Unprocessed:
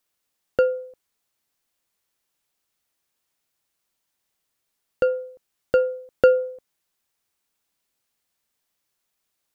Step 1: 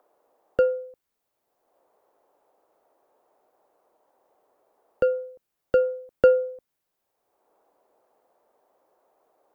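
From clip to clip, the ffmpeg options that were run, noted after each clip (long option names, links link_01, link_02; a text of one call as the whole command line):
ffmpeg -i in.wav -filter_complex "[0:a]lowpass=frequency=1200:poles=1,aemphasis=mode=production:type=50fm,acrossover=split=470|770[link_01][link_02][link_03];[link_02]acompressor=mode=upward:threshold=-42dB:ratio=2.5[link_04];[link_01][link_04][link_03]amix=inputs=3:normalize=0" out.wav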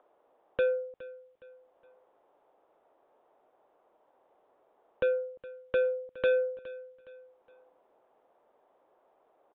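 ffmpeg -i in.wav -af "aresample=8000,asoftclip=type=tanh:threshold=-23dB,aresample=44100,aecho=1:1:415|830|1245:0.126|0.0478|0.0182" out.wav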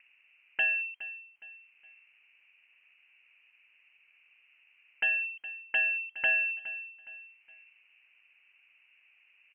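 ffmpeg -i in.wav -filter_complex "[0:a]acrossover=split=400|840[link_01][link_02][link_03];[link_02]asoftclip=type=hard:threshold=-38.5dB[link_04];[link_01][link_04][link_03]amix=inputs=3:normalize=0,lowpass=frequency=2700:width_type=q:width=0.5098,lowpass=frequency=2700:width_type=q:width=0.6013,lowpass=frequency=2700:width_type=q:width=0.9,lowpass=frequency=2700:width_type=q:width=2.563,afreqshift=-3200,volume=3.5dB" out.wav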